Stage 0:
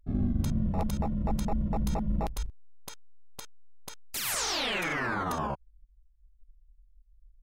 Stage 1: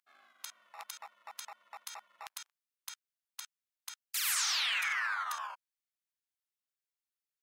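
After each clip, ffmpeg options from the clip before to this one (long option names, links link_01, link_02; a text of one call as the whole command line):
ffmpeg -i in.wav -af "highpass=frequency=1200:width=0.5412,highpass=frequency=1200:width=1.3066" out.wav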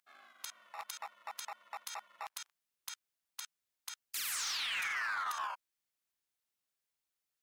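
ffmpeg -i in.wav -af "alimiter=level_in=7.5dB:limit=-24dB:level=0:latency=1:release=100,volume=-7.5dB,volume=36dB,asoftclip=hard,volume=-36dB,volume=4dB" out.wav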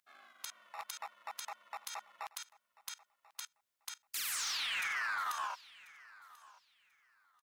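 ffmpeg -i in.wav -af "aecho=1:1:1039|2078:0.0891|0.0178" out.wav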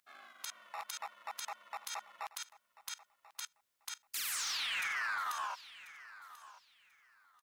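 ffmpeg -i in.wav -af "alimiter=level_in=12dB:limit=-24dB:level=0:latency=1:release=43,volume=-12dB,volume=4dB" out.wav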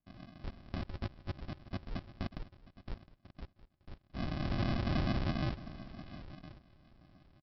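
ffmpeg -i in.wav -af "aresample=11025,acrusher=samples=24:mix=1:aa=0.000001,aresample=44100,aecho=1:1:712:0.112,volume=5dB" out.wav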